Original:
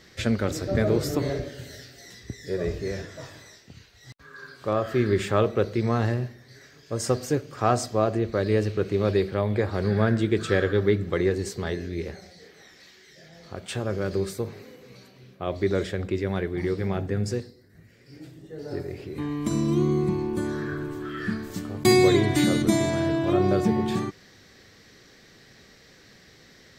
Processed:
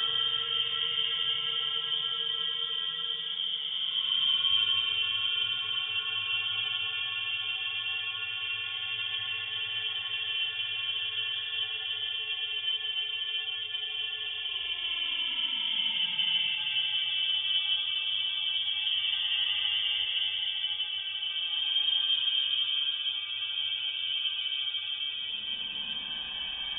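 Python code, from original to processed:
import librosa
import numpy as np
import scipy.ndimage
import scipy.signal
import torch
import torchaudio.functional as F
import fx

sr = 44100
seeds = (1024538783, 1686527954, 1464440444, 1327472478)

y = fx.freq_invert(x, sr, carrier_hz=3400)
y = fx.paulstretch(y, sr, seeds[0], factor=18.0, window_s=0.1, from_s=22.45)
y = y * librosa.db_to_amplitude(-9.0)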